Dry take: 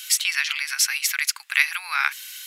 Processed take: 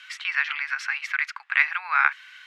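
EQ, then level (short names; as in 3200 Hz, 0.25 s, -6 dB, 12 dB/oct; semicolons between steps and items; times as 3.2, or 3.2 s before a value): Butterworth band-pass 980 Hz, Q 0.72; +4.5 dB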